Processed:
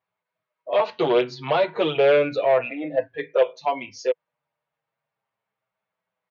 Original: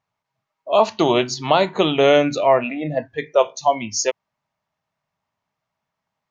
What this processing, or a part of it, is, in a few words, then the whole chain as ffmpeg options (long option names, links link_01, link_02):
barber-pole flanger into a guitar amplifier: -filter_complex "[0:a]asplit=2[link_01][link_02];[link_02]adelay=7.4,afreqshift=-0.33[link_03];[link_01][link_03]amix=inputs=2:normalize=1,asoftclip=type=tanh:threshold=-13dB,highpass=84,equalizer=frequency=92:width_type=q:width=4:gain=-9,equalizer=frequency=230:width_type=q:width=4:gain=-7,equalizer=frequency=490:width_type=q:width=4:gain=10,equalizer=frequency=1500:width_type=q:width=4:gain=4,equalizer=frequency=2300:width_type=q:width=4:gain=3,lowpass=frequency=4100:width=0.5412,lowpass=frequency=4100:width=1.3066,volume=-2dB"